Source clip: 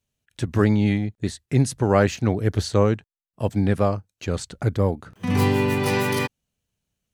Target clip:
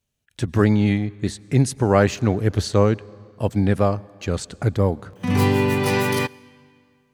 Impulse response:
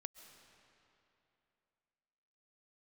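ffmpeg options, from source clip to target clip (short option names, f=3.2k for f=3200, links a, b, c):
-filter_complex "[0:a]asplit=2[a][b];[1:a]atrim=start_sample=2205,asetrate=57330,aresample=44100[c];[b][c]afir=irnorm=-1:irlink=0,volume=-5.5dB[d];[a][d]amix=inputs=2:normalize=0"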